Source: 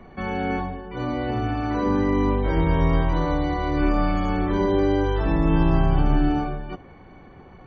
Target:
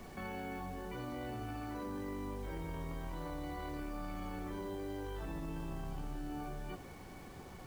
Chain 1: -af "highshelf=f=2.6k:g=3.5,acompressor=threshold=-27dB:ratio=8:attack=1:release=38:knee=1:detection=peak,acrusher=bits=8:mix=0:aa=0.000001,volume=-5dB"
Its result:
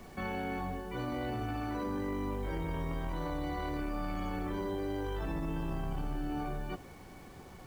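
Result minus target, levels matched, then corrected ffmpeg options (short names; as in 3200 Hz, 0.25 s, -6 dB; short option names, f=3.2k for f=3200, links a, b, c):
compressor: peak gain reduction -6 dB
-af "highshelf=f=2.6k:g=3.5,acompressor=threshold=-34dB:ratio=8:attack=1:release=38:knee=1:detection=peak,acrusher=bits=8:mix=0:aa=0.000001,volume=-5dB"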